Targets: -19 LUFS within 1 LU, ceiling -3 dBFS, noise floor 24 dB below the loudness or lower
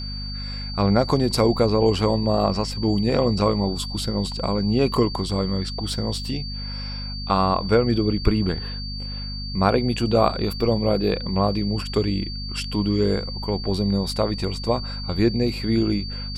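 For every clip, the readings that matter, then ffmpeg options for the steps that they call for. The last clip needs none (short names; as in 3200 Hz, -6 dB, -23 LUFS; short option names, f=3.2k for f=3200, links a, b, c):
hum 50 Hz; harmonics up to 250 Hz; hum level -29 dBFS; steady tone 4600 Hz; tone level -33 dBFS; loudness -23.0 LUFS; peak -3.0 dBFS; loudness target -19.0 LUFS
-> -af "bandreject=f=50:t=h:w=6,bandreject=f=100:t=h:w=6,bandreject=f=150:t=h:w=6,bandreject=f=200:t=h:w=6,bandreject=f=250:t=h:w=6"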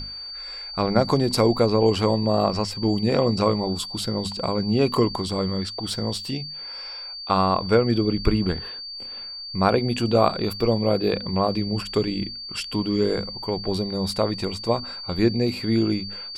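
hum none; steady tone 4600 Hz; tone level -33 dBFS
-> -af "bandreject=f=4.6k:w=30"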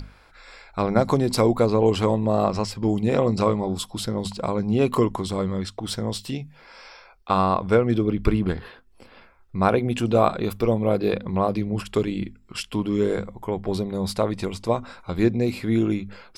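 steady tone none; loudness -23.5 LUFS; peak -3.5 dBFS; loudness target -19.0 LUFS
-> -af "volume=4.5dB,alimiter=limit=-3dB:level=0:latency=1"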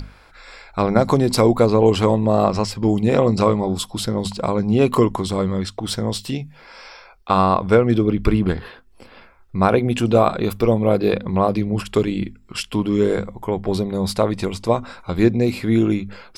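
loudness -19.5 LUFS; peak -3.0 dBFS; noise floor -49 dBFS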